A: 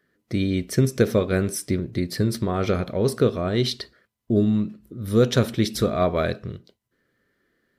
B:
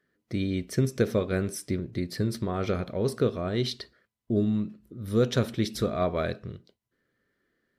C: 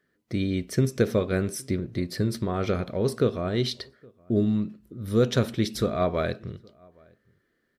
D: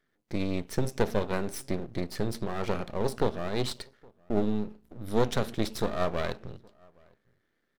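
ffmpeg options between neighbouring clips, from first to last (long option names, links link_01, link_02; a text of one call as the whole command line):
ffmpeg -i in.wav -af "highshelf=frequency=9400:gain=-4.5,volume=-5.5dB" out.wav
ffmpeg -i in.wav -filter_complex "[0:a]asplit=2[link_01][link_02];[link_02]adelay=816.3,volume=-28dB,highshelf=frequency=4000:gain=-18.4[link_03];[link_01][link_03]amix=inputs=2:normalize=0,volume=2dB" out.wav
ffmpeg -i in.wav -af "aeval=exprs='max(val(0),0)':channel_layout=same" out.wav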